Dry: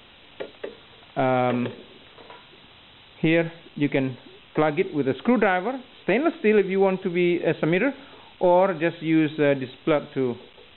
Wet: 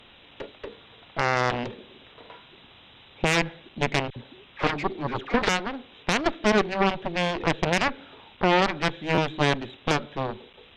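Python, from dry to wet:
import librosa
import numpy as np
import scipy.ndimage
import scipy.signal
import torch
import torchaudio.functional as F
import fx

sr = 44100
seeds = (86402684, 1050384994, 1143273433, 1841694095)

y = fx.dispersion(x, sr, late='lows', ms=61.0, hz=1100.0, at=(4.1, 5.49))
y = fx.cheby_harmonics(y, sr, harmonics=(4, 7), levels_db=(-10, -9), full_scale_db=-7.5)
y = fx.buffer_glitch(y, sr, at_s=(9.14,), block=512, repeats=2)
y = y * 10.0 ** (-5.0 / 20.0)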